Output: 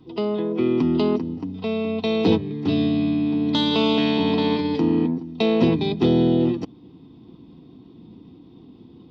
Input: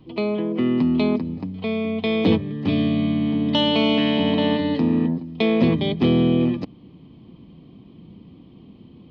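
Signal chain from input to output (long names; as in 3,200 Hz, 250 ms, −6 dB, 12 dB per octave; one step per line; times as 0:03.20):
notch comb filter 580 Hz
formants moved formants +2 semitones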